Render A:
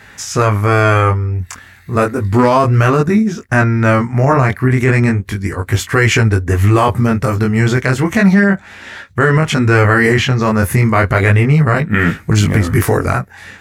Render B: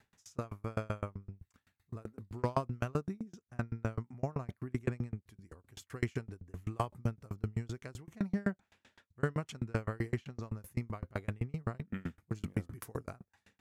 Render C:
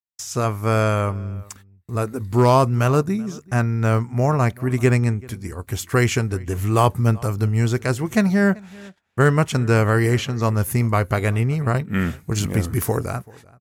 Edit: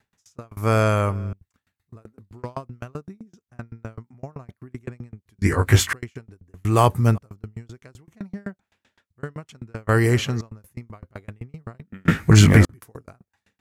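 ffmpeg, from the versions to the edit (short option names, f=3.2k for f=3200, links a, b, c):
-filter_complex "[2:a]asplit=3[a][b][c];[0:a]asplit=2[d][e];[1:a]asplit=6[f][g][h][i][j][k];[f]atrim=end=0.572[l];[a]atrim=start=0.568:end=1.332[m];[g]atrim=start=1.328:end=5.422[n];[d]atrim=start=5.418:end=5.932[o];[h]atrim=start=5.928:end=6.652[p];[b]atrim=start=6.648:end=7.182[q];[i]atrim=start=7.178:end=9.892[r];[c]atrim=start=9.888:end=10.412[s];[j]atrim=start=10.408:end=12.082[t];[e]atrim=start=12.078:end=12.652[u];[k]atrim=start=12.648[v];[l][m]acrossfade=d=0.004:c1=hsin:c2=hsin[w];[w][n]acrossfade=d=0.004:c1=hsin:c2=hsin[x];[x][o]acrossfade=d=0.004:c1=hsin:c2=hsin[y];[y][p]acrossfade=d=0.004:c1=hsin:c2=hsin[z];[z][q]acrossfade=d=0.004:c1=hsin:c2=hsin[aa];[aa][r]acrossfade=d=0.004:c1=hsin:c2=hsin[ab];[ab][s]acrossfade=d=0.004:c1=hsin:c2=hsin[ac];[ac][t]acrossfade=d=0.004:c1=hsin:c2=hsin[ad];[ad][u]acrossfade=d=0.004:c1=hsin:c2=hsin[ae];[ae][v]acrossfade=d=0.004:c1=hsin:c2=hsin"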